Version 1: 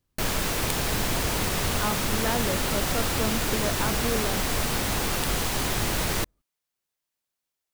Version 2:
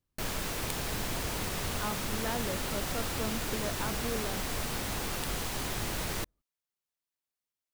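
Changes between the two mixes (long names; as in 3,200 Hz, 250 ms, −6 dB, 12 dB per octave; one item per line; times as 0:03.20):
speech −7.0 dB
background −8.0 dB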